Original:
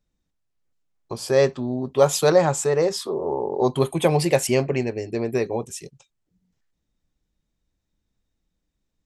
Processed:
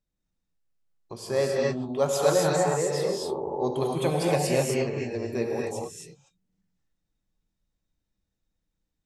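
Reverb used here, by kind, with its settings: gated-style reverb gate 290 ms rising, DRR -2.5 dB; trim -8.5 dB

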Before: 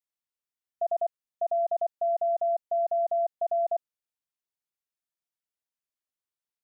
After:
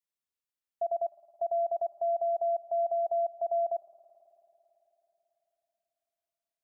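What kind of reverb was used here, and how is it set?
spring tank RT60 3.8 s, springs 54 ms, chirp 30 ms, DRR 16.5 dB; trim -2.5 dB

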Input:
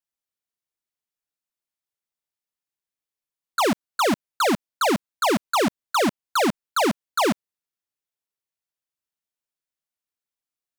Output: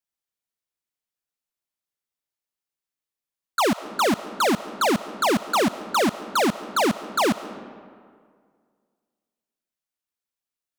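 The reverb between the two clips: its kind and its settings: algorithmic reverb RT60 2 s, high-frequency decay 0.6×, pre-delay 95 ms, DRR 14.5 dB

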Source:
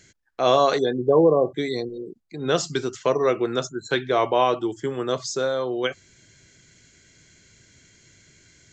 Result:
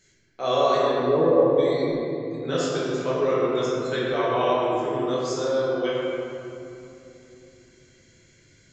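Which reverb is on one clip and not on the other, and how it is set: simulated room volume 130 m³, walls hard, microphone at 1.1 m; trim -10.5 dB

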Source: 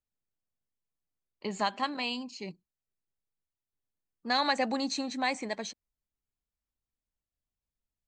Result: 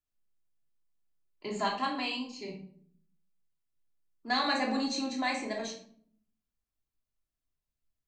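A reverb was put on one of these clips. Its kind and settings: simulated room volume 800 m³, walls furnished, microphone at 3.1 m; trim -4.5 dB

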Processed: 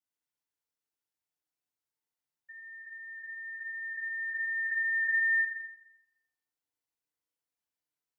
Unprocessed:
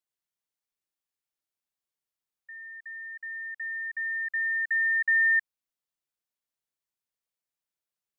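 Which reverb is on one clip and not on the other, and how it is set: FDN reverb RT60 1 s, low-frequency decay 0.9×, high-frequency decay 0.6×, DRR -9 dB; trim -11 dB

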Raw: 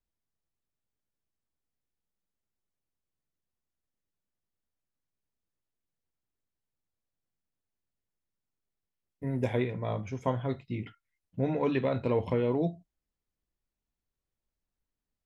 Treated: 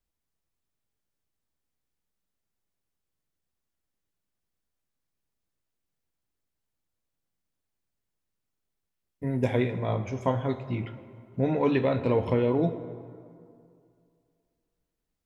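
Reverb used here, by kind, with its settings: plate-style reverb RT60 2.4 s, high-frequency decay 0.55×, DRR 10.5 dB; trim +3.5 dB

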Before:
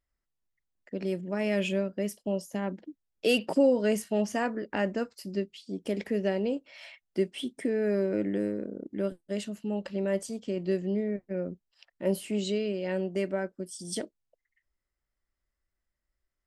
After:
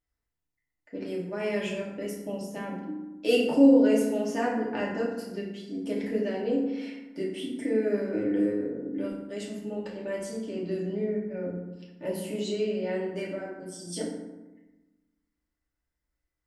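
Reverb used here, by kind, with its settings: FDN reverb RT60 1.1 s, low-frequency decay 1.35×, high-frequency decay 0.5×, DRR -5.5 dB; trim -6 dB

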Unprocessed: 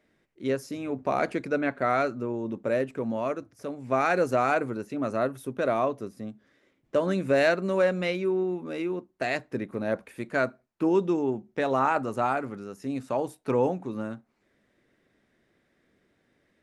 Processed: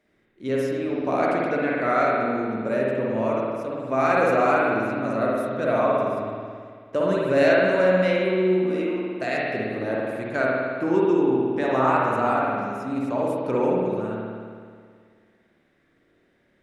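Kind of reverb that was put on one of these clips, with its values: spring tank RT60 2 s, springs 54 ms, chirp 25 ms, DRR -4.5 dB; trim -1 dB

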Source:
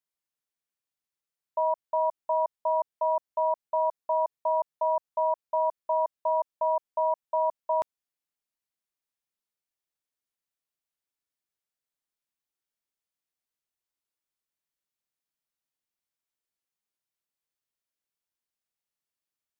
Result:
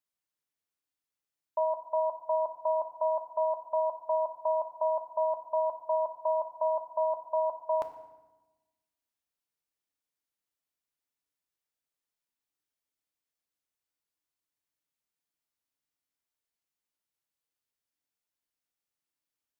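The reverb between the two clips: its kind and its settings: FDN reverb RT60 1.1 s, low-frequency decay 1.45×, high-frequency decay 0.75×, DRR 6.5 dB; trim -1.5 dB

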